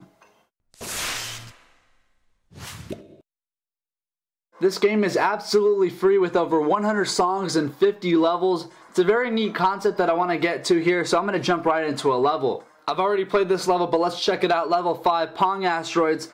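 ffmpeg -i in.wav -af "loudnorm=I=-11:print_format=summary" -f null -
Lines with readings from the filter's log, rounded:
Input Integrated:    -22.0 LUFS
Input True Peak:      -9.7 dBTP
Input LRA:             7.5 LU
Input Threshold:     -32.6 LUFS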